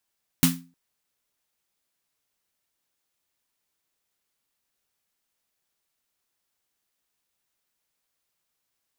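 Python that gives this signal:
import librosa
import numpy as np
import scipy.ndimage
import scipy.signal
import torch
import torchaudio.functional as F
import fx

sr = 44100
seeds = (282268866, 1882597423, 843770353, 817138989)

y = fx.drum_snare(sr, seeds[0], length_s=0.31, hz=170.0, second_hz=260.0, noise_db=-1.0, noise_from_hz=980.0, decay_s=0.36, noise_decay_s=0.25)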